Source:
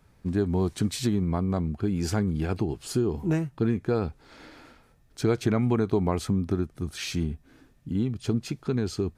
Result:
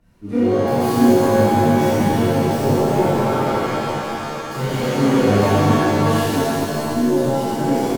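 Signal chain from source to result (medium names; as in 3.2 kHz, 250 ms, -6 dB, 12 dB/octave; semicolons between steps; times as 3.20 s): self-modulated delay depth 0.27 ms; tape speed +15%; phaser 1.5 Hz, delay 4.3 ms, feedback 77%; on a send: early reflections 29 ms -3 dB, 70 ms -4.5 dB; on the sum: pitch-shifted reverb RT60 3.1 s, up +7 st, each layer -2 dB, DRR -10 dB; trim -10.5 dB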